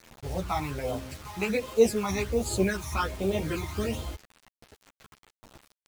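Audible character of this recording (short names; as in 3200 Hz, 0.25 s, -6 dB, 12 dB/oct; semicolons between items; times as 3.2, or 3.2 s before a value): phasing stages 12, 1.3 Hz, lowest notch 490–1900 Hz; tremolo saw down 2.4 Hz, depth 35%; a quantiser's noise floor 8-bit, dither none; a shimmering, thickened sound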